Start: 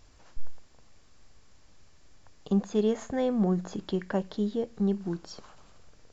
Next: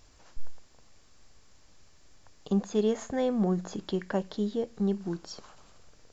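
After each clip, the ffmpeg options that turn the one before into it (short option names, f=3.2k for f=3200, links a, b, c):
-af "bass=f=250:g=-2,treble=f=4k:g=3"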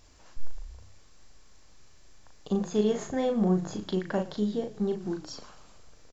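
-filter_complex "[0:a]asplit=2[a][b];[b]adelay=38,volume=-5dB[c];[a][c]amix=inputs=2:normalize=0,asplit=4[d][e][f][g];[e]adelay=114,afreqshift=-33,volume=-19dB[h];[f]adelay=228,afreqshift=-66,volume=-27.6dB[i];[g]adelay=342,afreqshift=-99,volume=-36.3dB[j];[d][h][i][j]amix=inputs=4:normalize=0"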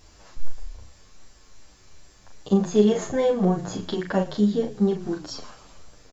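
-filter_complex "[0:a]asplit=2[a][b];[b]adelay=9,afreqshift=-2.6[c];[a][c]amix=inputs=2:normalize=1,volume=9dB"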